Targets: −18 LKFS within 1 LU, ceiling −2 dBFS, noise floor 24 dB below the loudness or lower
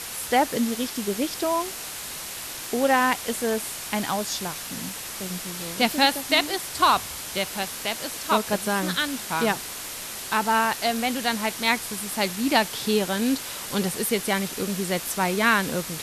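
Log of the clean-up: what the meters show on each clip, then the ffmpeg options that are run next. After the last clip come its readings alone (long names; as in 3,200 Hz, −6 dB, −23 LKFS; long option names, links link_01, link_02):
background noise floor −35 dBFS; target noise floor −49 dBFS; integrated loudness −25.0 LKFS; sample peak −5.5 dBFS; target loudness −18.0 LKFS
→ -af "afftdn=noise_reduction=14:noise_floor=-35"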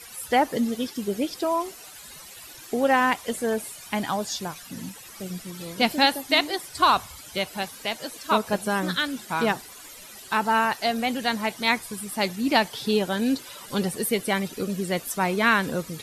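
background noise floor −44 dBFS; target noise floor −49 dBFS
→ -af "afftdn=noise_reduction=6:noise_floor=-44"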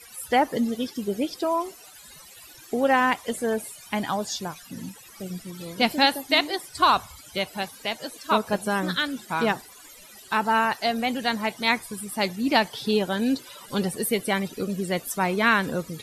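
background noise floor −48 dBFS; target noise floor −49 dBFS
→ -af "afftdn=noise_reduction=6:noise_floor=-48"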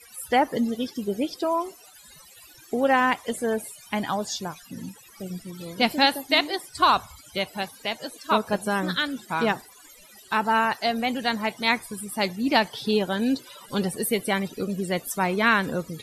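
background noise floor −51 dBFS; integrated loudness −25.0 LKFS; sample peak −6.0 dBFS; target loudness −18.0 LKFS
→ -af "volume=7dB,alimiter=limit=-2dB:level=0:latency=1"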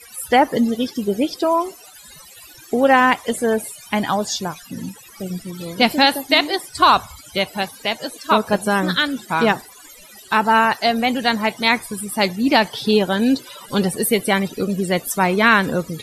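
integrated loudness −18.5 LKFS; sample peak −2.0 dBFS; background noise floor −44 dBFS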